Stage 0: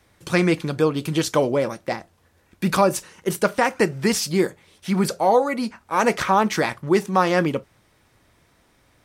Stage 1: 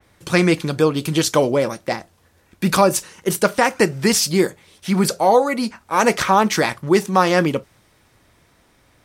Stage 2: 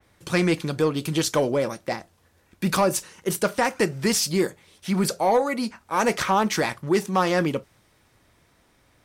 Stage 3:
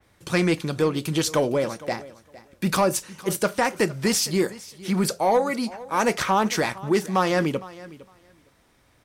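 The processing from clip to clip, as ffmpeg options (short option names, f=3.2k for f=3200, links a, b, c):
-af "adynamicequalizer=threshold=0.0141:dfrequency=3200:dqfactor=0.7:tfrequency=3200:tqfactor=0.7:attack=5:release=100:ratio=0.375:range=2:mode=boostabove:tftype=highshelf,volume=3dB"
-af "asoftclip=type=tanh:threshold=-6.5dB,volume=-4.5dB"
-af "aecho=1:1:459|918:0.112|0.018"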